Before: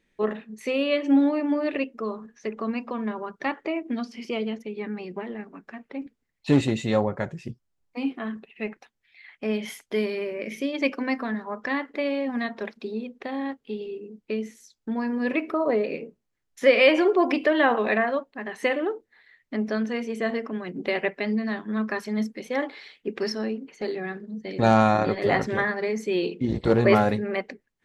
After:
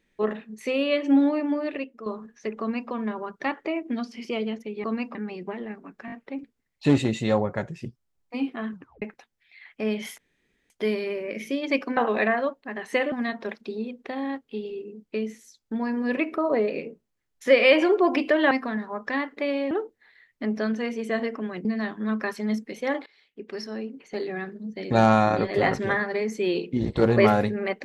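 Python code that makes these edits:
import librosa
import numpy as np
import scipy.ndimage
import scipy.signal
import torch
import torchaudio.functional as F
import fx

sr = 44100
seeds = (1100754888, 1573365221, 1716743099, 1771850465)

y = fx.edit(x, sr, fx.fade_out_to(start_s=1.35, length_s=0.71, floor_db=-9.5),
    fx.duplicate(start_s=2.6, length_s=0.31, to_s=4.84),
    fx.stutter(start_s=5.75, slice_s=0.02, count=4),
    fx.tape_stop(start_s=8.36, length_s=0.29),
    fx.insert_room_tone(at_s=9.81, length_s=0.52),
    fx.swap(start_s=11.08, length_s=1.2, other_s=17.67, other_length_s=1.15),
    fx.cut(start_s=20.76, length_s=0.57),
    fx.fade_in_from(start_s=22.74, length_s=1.3, floor_db=-20.0), tone=tone)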